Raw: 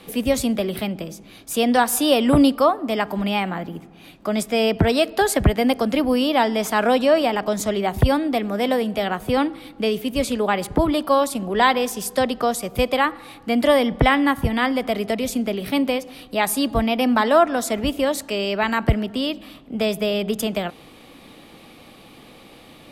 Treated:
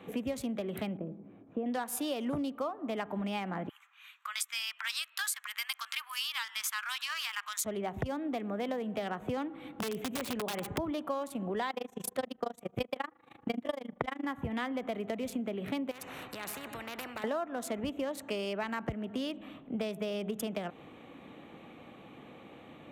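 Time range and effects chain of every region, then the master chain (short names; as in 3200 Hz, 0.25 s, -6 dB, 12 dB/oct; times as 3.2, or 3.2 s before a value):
0.97–1.66 band-pass 250 Hz, Q 0.56 + air absorption 300 m
3.69–7.65 steep high-pass 1100 Hz 48 dB/oct + high shelf 3700 Hz +10.5 dB
9.59–10.78 compressor 10:1, threshold -24 dBFS + high shelf 4600 Hz +3.5 dB + wrapped overs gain 21.5 dB
11.7–14.25 AM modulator 26 Hz, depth 75% + transient shaper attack +9 dB, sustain -8 dB
15.91–17.24 notch 3300 Hz, Q 5.4 + compressor 2.5:1, threshold -27 dBFS + spectral compressor 4:1
whole clip: Wiener smoothing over 9 samples; HPF 88 Hz 12 dB/oct; compressor 10:1, threshold -27 dBFS; gain -4.5 dB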